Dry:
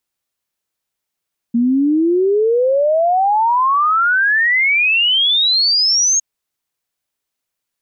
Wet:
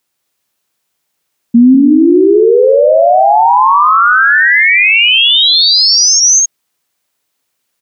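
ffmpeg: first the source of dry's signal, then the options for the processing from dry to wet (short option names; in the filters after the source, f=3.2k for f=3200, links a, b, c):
-f lavfi -i "aevalsrc='0.282*clip(min(t,4.66-t)/0.01,0,1)*sin(2*PI*230*4.66/log(6600/230)*(exp(log(6600/230)*t/4.66)-1))':d=4.66:s=44100"
-af "highpass=100,aecho=1:1:195.3|259.5:0.447|0.562,alimiter=level_in=10dB:limit=-1dB:release=50:level=0:latency=1"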